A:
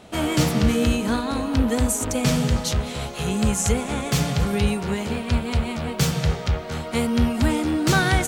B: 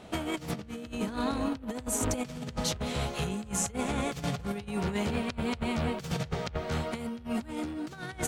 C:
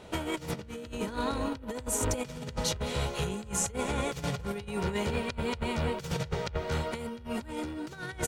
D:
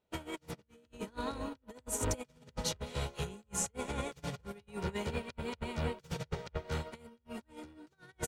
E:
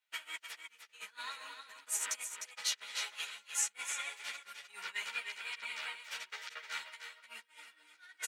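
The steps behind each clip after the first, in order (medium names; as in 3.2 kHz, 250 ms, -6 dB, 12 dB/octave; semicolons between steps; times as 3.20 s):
treble shelf 5.1 kHz -4.5 dB; compressor with a negative ratio -26 dBFS, ratio -0.5; trim -6.5 dB
comb 2.1 ms, depth 37%
upward expansion 2.5:1, over -48 dBFS; trim -2 dB
resonant high-pass 1.9 kHz, resonance Q 1.7; delay 304 ms -8 dB; three-phase chorus; trim +5 dB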